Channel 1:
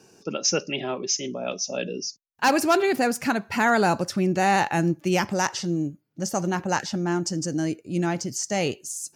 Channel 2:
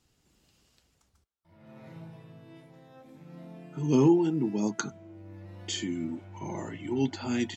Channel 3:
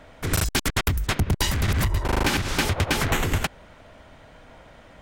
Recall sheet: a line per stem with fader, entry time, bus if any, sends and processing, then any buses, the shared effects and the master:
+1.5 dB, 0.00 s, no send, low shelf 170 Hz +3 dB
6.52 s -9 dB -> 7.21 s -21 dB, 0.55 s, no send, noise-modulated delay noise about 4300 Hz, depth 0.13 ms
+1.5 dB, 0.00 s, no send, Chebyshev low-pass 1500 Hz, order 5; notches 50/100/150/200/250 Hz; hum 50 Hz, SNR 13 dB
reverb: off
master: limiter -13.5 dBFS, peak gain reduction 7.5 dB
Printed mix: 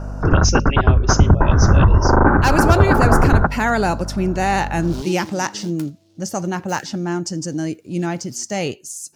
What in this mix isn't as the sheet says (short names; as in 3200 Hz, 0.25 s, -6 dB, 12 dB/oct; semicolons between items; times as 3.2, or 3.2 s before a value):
stem 2: entry 0.55 s -> 1.00 s; stem 3 +1.5 dB -> +12.0 dB; master: missing limiter -13.5 dBFS, peak gain reduction 7.5 dB